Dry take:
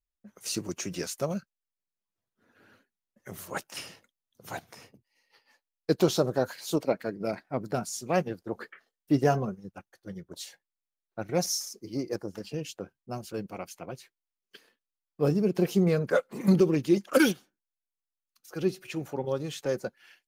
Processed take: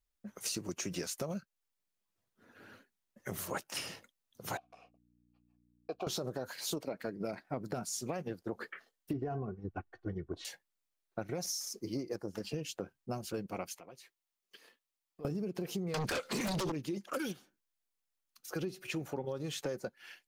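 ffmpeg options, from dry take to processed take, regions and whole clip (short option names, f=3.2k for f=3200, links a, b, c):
-filter_complex "[0:a]asettb=1/sr,asplit=3[a][b][c];[a]atrim=end=4.574[d];[b]atrim=start=4.57:end=6.07,asetpts=PTS-STARTPTS,afade=t=in:d=0.004:c=qsin,afade=t=out:st=1.496:d=0.004:c=qsin,agate=range=-33dB:threshold=-54dB:ratio=3:release=100:detection=peak,aeval=exprs='val(0)+0.00631*(sin(2*PI*60*n/s)+sin(2*PI*2*60*n/s)/2+sin(2*PI*3*60*n/s)/3+sin(2*PI*4*60*n/s)/4+sin(2*PI*5*60*n/s)/5)':c=same,asplit=3[e][f][g];[e]bandpass=f=730:t=q:w=8,volume=0dB[h];[f]bandpass=f=1.09k:t=q:w=8,volume=-6dB[i];[g]bandpass=f=2.44k:t=q:w=8,volume=-9dB[j];[h][i][j]amix=inputs=3:normalize=0[k];[c]atrim=start=6.066[l];[d][k]acrossfade=d=0.004:c1=hsin:c2=qsin[m];[m][l]acrossfade=d=0.004:c1=qsin:c2=hsin,asettb=1/sr,asplit=3[n][o][p];[n]atrim=end=9.134[q];[o]atrim=start=9.13:end=10.45,asetpts=PTS-STARTPTS,afade=t=in:d=0.004:c=qsin,afade=t=out:st=1.316:d=0.004:c=qsin,lowpass=2k,lowshelf=f=190:g=10.5,aecho=1:1:2.7:0.58,atrim=end_sample=58212[r];[p]atrim=start=10.446[s];[q][r]acrossfade=d=0.004:c1=hsin:c2=qsin[t];[t][s]acrossfade=d=0.004:c1=qsin:c2=hsin,asettb=1/sr,asplit=3[u][v][w];[u]atrim=end=13.744[x];[v]atrim=start=13.74:end=15.25,asetpts=PTS-STARTPTS,afade=t=in:d=0.004:c=qsin,afade=t=out:st=1.506:d=0.004:c=qsin,lowshelf=f=240:g=-10,bandreject=f=1.5k:w=11,acompressor=threshold=-58dB:ratio=3:attack=3.2:release=140:knee=1:detection=peak[y];[w]atrim=start=15.246[z];[x][y]acrossfade=d=0.004:c1=hsin:c2=qsin[aa];[aa][z]acrossfade=d=0.004:c1=qsin:c2=hsin,asettb=1/sr,asplit=3[ab][ac][ad];[ab]atrim=end=15.944[ae];[ac]atrim=start=15.94:end=16.72,asetpts=PTS-STARTPTS,afade=t=in:d=0.004:c=qsin,afade=t=out:st=0.776:d=0.004:c=qsin,equalizer=f=4.5k:t=o:w=2.4:g=14.5,acompressor=threshold=-25dB:ratio=8:attack=3.2:release=140:knee=1:detection=peak,aeval=exprs='0.168*sin(PI/2*5.01*val(0)/0.168)':c=same[af];[ad]atrim=start=16.716[ag];[ae][af]acrossfade=d=0.004:c1=hsin:c2=qsin[ah];[ah][ag]acrossfade=d=0.004:c1=qsin:c2=hsin,alimiter=limit=-20.5dB:level=0:latency=1:release=66,acompressor=threshold=-39dB:ratio=6,volume=4dB"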